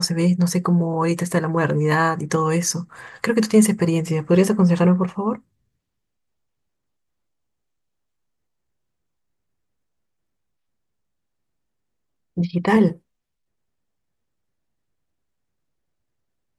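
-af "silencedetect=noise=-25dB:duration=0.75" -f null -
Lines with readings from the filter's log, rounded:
silence_start: 5.35
silence_end: 12.38 | silence_duration: 7.02
silence_start: 12.92
silence_end: 16.58 | silence_duration: 3.66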